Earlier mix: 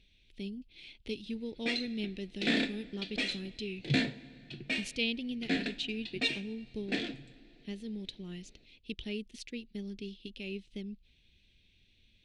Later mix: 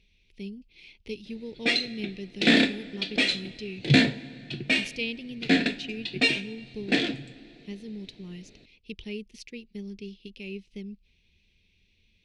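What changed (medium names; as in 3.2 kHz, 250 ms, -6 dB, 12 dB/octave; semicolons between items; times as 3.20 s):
speech: add rippled EQ curve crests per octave 0.82, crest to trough 6 dB; background +10.0 dB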